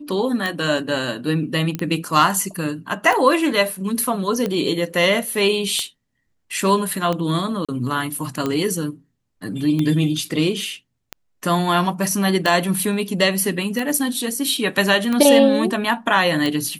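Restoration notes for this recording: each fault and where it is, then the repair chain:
tick 45 rpm -10 dBFS
1.75 pop -12 dBFS
7.65–7.69 gap 36 ms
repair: de-click; interpolate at 7.65, 36 ms

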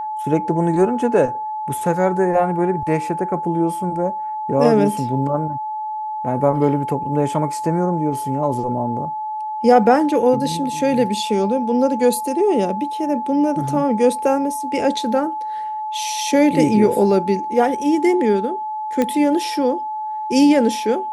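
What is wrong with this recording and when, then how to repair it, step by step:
tone 860 Hz -23 dBFS
19.02 pop -7 dBFS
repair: de-click; notch 860 Hz, Q 30

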